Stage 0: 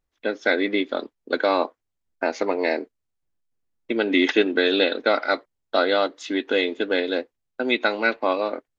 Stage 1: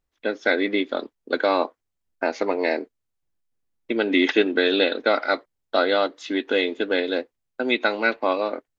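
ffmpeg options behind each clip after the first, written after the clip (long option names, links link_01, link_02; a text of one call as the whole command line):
ffmpeg -i in.wav -filter_complex "[0:a]acrossover=split=6500[link_01][link_02];[link_02]acompressor=threshold=-56dB:ratio=4:attack=1:release=60[link_03];[link_01][link_03]amix=inputs=2:normalize=0" out.wav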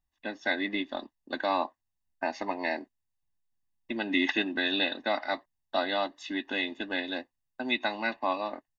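ffmpeg -i in.wav -af "aecho=1:1:1.1:0.83,volume=-8dB" out.wav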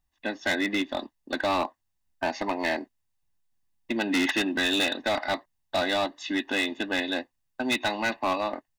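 ffmpeg -i in.wav -af "volume=26dB,asoftclip=hard,volume=-26dB,volume=5.5dB" out.wav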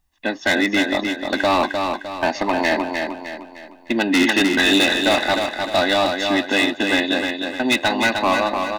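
ffmpeg -i in.wav -af "aecho=1:1:305|610|915|1220|1525:0.562|0.236|0.0992|0.0417|0.0175,volume=8dB" out.wav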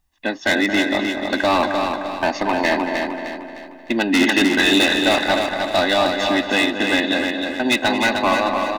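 ffmpeg -i in.wav -filter_complex "[0:a]asplit=2[link_01][link_02];[link_02]adelay=226,lowpass=frequency=2000:poles=1,volume=-7.5dB,asplit=2[link_03][link_04];[link_04]adelay=226,lowpass=frequency=2000:poles=1,volume=0.42,asplit=2[link_05][link_06];[link_06]adelay=226,lowpass=frequency=2000:poles=1,volume=0.42,asplit=2[link_07][link_08];[link_08]adelay=226,lowpass=frequency=2000:poles=1,volume=0.42,asplit=2[link_09][link_10];[link_10]adelay=226,lowpass=frequency=2000:poles=1,volume=0.42[link_11];[link_01][link_03][link_05][link_07][link_09][link_11]amix=inputs=6:normalize=0" out.wav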